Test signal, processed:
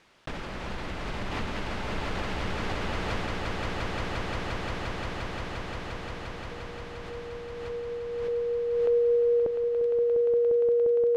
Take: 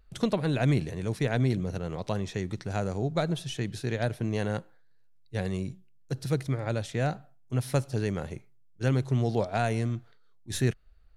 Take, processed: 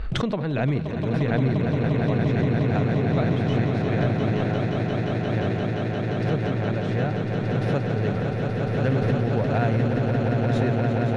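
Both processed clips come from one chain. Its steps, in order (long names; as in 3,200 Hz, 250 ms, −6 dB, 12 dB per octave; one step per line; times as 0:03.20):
low-pass filter 2,900 Hz 12 dB per octave
on a send: echo that builds up and dies away 175 ms, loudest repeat 8, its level −6 dB
on the sum: background raised ahead of every attack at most 28 dB per second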